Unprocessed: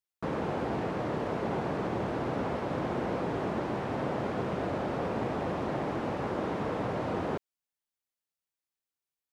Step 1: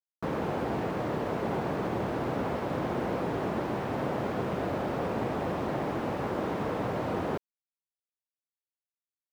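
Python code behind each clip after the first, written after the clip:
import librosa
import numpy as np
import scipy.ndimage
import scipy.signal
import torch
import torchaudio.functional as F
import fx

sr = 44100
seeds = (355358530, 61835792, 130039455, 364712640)

y = fx.quant_dither(x, sr, seeds[0], bits=10, dither='none')
y = y * librosa.db_to_amplitude(1.0)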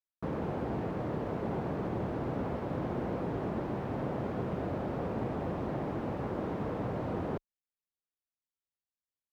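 y = fx.tilt_eq(x, sr, slope=-2.0)
y = y * librosa.db_to_amplitude(-6.5)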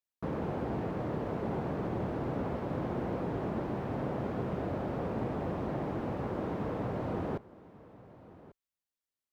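y = x + 10.0 ** (-19.0 / 20.0) * np.pad(x, (int(1142 * sr / 1000.0), 0))[:len(x)]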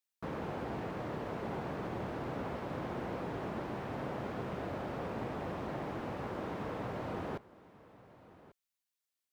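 y = fx.tilt_shelf(x, sr, db=-5.0, hz=940.0)
y = y * librosa.db_to_amplitude(-1.5)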